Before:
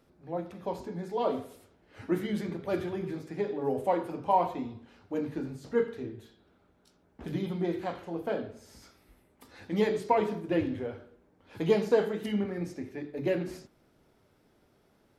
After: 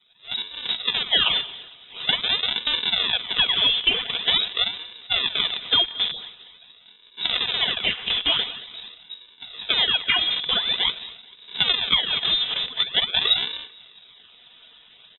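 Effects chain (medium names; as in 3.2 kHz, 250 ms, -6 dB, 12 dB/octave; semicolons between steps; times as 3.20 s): frequency axis rescaled in octaves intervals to 130%; in parallel at -4.5 dB: bit crusher 6-bit; on the sum: compression 12:1, threshold -38 dBFS, peak gain reduction 21 dB; decimation with a swept rate 40×, swing 160% 0.46 Hz; on a send: feedback delay 224 ms, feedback 37%, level -21.5 dB; on the sum: level rider gain up to 12.5 dB; peaking EQ 95 Hz -9 dB 1.9 oct; comb 3.9 ms, depth 35%; frequency inversion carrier 3.8 kHz; peaking EQ 390 Hz +3 dB 2.4 oct; trim +8 dB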